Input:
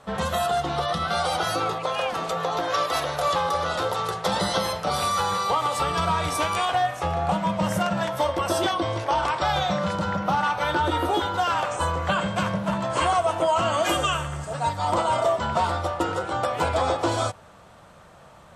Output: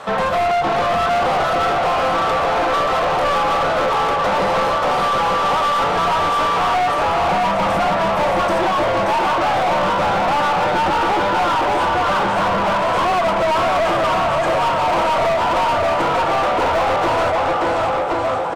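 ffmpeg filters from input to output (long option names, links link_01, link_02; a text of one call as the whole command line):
ffmpeg -i in.wav -filter_complex "[0:a]acrossover=split=1400[link_01][link_02];[link_02]acompressor=threshold=-45dB:ratio=6[link_03];[link_01][link_03]amix=inputs=2:normalize=0,aecho=1:1:580|1073|1492|1848|2151:0.631|0.398|0.251|0.158|0.1,asplit=2[link_04][link_05];[link_05]highpass=frequency=720:poles=1,volume=28dB,asoftclip=type=tanh:threshold=-7dB[link_06];[link_04][link_06]amix=inputs=2:normalize=0,lowpass=frequency=2600:poles=1,volume=-6dB,aeval=exprs='clip(val(0),-1,0.188)':channel_layout=same,volume=-2dB" out.wav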